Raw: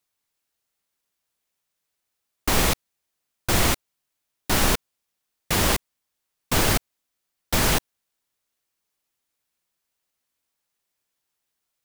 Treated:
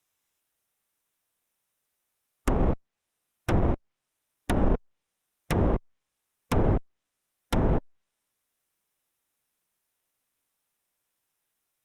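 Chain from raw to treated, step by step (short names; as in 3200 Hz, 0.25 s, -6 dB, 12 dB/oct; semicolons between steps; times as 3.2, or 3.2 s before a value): notch 4500 Hz, Q 5.1; tube stage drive 15 dB, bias 0.4; treble ducked by the level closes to 620 Hz, closed at -23 dBFS; harmonic-percussive split percussive -4 dB; gain +5.5 dB; Opus 48 kbps 48000 Hz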